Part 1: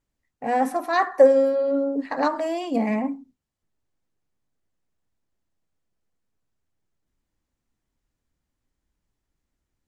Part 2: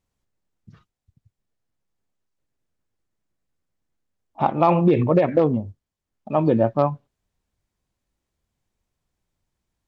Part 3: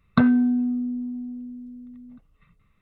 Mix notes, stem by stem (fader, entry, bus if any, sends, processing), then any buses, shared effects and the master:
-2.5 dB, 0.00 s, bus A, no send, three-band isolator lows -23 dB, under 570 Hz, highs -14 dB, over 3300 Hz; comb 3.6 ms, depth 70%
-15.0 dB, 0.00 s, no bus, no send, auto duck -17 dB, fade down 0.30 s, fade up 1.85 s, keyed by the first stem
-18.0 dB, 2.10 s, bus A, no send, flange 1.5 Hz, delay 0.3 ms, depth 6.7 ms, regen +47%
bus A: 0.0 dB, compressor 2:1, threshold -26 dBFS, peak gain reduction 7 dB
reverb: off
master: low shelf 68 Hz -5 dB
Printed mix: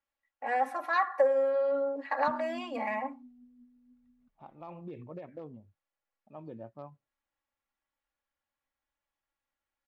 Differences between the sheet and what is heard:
stem 2 -15.0 dB -> -26.5 dB; master: missing low shelf 68 Hz -5 dB

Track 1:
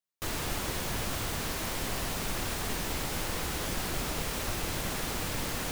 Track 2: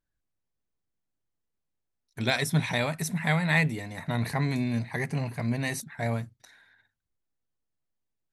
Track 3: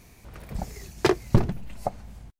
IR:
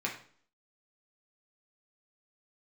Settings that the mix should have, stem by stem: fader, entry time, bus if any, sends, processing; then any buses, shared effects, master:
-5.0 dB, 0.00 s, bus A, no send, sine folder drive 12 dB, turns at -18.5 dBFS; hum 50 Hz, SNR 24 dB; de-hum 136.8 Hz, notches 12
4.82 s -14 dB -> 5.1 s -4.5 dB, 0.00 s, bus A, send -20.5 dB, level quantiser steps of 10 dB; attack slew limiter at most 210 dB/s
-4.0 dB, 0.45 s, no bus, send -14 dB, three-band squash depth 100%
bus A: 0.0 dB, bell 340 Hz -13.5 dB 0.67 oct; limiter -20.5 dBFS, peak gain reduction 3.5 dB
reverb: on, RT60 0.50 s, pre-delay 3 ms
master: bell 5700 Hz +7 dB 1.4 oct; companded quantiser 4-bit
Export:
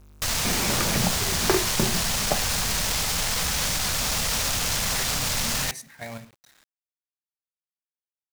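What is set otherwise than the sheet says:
stem 2: missing attack slew limiter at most 210 dB/s; reverb return +9.5 dB

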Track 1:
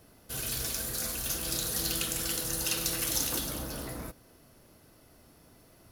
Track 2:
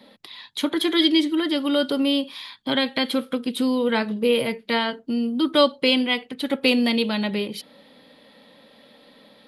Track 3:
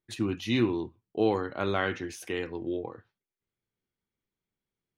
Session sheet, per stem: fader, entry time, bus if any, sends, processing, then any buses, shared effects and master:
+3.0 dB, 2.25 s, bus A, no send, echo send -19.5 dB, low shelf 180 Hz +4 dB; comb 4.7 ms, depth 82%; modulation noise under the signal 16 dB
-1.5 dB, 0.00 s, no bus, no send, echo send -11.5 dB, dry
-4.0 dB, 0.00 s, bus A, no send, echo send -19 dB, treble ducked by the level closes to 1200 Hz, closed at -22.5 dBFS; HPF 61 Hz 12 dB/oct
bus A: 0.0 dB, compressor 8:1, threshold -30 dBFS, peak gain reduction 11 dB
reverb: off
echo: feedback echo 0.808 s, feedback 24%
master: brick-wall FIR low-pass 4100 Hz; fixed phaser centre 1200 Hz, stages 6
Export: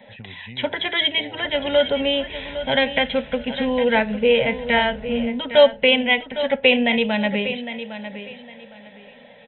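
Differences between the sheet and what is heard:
stem 1: entry 2.25 s -> 1.15 s; stem 2 -1.5 dB -> +7.5 dB; stem 3 -4.0 dB -> +4.0 dB

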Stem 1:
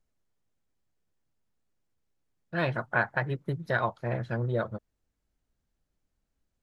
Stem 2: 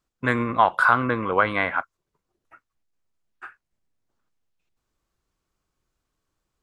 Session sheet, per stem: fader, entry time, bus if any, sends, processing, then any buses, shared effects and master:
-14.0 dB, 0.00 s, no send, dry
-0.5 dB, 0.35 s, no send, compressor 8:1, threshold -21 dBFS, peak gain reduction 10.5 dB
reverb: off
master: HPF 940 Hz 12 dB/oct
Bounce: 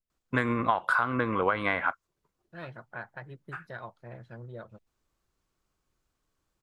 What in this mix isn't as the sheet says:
stem 2: entry 0.35 s -> 0.10 s; master: missing HPF 940 Hz 12 dB/oct

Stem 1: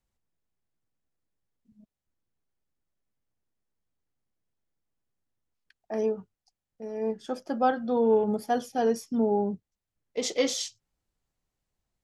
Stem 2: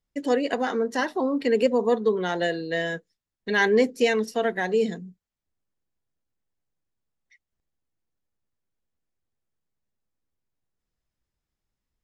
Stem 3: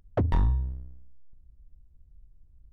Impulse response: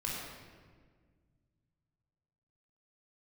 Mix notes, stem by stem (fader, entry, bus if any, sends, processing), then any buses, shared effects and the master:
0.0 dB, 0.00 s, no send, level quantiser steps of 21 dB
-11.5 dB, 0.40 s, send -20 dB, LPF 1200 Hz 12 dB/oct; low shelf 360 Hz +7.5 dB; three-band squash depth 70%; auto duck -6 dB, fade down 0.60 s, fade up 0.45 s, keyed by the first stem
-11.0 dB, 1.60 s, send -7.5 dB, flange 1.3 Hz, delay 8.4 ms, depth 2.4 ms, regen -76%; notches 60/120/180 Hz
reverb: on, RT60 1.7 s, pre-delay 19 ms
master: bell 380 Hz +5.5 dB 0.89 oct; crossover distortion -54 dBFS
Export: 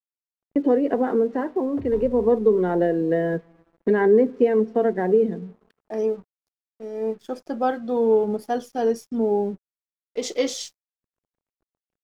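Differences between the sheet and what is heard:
stem 1: missing level quantiser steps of 21 dB; stem 2 -11.5 dB -> -2.0 dB; reverb return -9.0 dB

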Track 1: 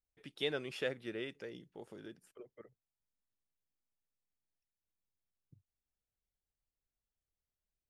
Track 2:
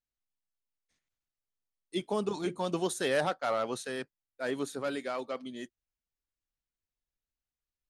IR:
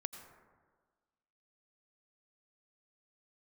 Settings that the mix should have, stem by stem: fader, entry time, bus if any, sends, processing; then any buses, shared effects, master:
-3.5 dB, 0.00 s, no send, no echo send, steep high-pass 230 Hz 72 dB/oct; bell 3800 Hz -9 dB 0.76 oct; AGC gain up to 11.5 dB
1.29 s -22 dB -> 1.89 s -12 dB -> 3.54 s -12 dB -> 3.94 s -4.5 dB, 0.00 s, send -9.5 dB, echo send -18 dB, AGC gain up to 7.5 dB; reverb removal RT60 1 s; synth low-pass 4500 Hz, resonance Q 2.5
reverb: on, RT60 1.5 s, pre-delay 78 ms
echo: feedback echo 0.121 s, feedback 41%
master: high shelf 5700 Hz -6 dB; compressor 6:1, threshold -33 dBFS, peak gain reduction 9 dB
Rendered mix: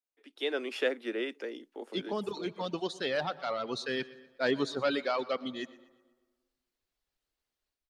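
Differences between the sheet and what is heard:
stem 1: missing bell 3800 Hz -9 dB 0.76 oct; master: missing compressor 6:1, threshold -33 dBFS, peak gain reduction 9 dB

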